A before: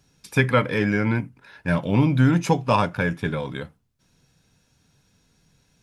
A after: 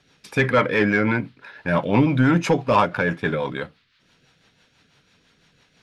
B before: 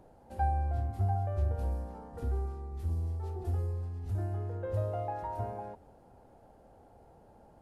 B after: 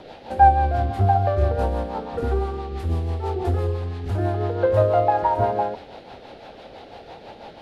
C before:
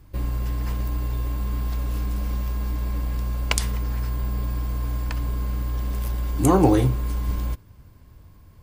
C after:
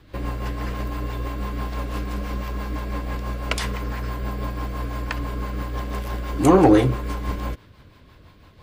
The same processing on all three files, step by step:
overdrive pedal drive 17 dB, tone 1600 Hz, clips at -1 dBFS; band noise 1200–4300 Hz -63 dBFS; rotary speaker horn 6 Hz; normalise peaks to -3 dBFS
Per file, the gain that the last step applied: +1.0, +13.0, +2.0 dB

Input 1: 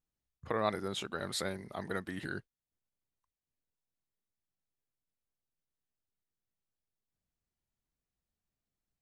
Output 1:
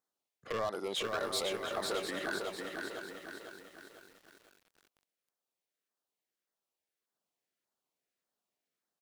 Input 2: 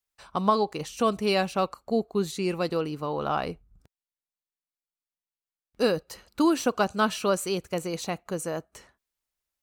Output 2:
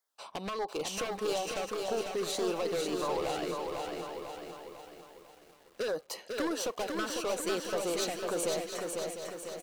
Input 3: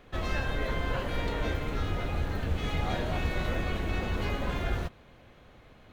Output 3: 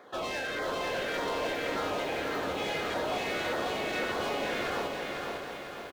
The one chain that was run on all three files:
HPF 450 Hz 12 dB/oct; high shelf 3400 Hz -7 dB; compressor 20:1, threshold -32 dBFS; hard clip -37 dBFS; LFO notch saw down 1.7 Hz 730–2900 Hz; echo 0.701 s -9.5 dB; lo-fi delay 0.499 s, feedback 55%, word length 11-bit, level -4 dB; gain +8 dB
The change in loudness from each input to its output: +0.5, -7.0, 0.0 LU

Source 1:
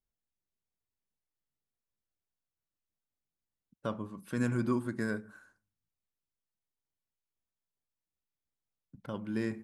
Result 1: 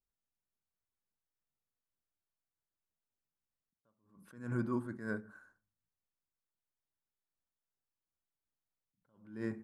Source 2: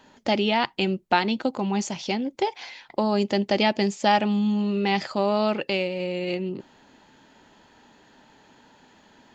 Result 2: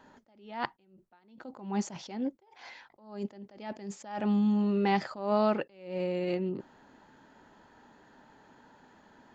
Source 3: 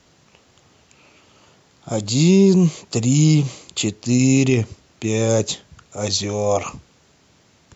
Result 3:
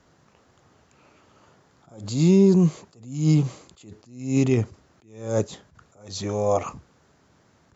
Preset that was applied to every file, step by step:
resonant high shelf 2000 Hz -6 dB, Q 1.5; attack slew limiter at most 110 dB/s; gain -3 dB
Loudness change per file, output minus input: -4.5, -7.5, -4.0 LU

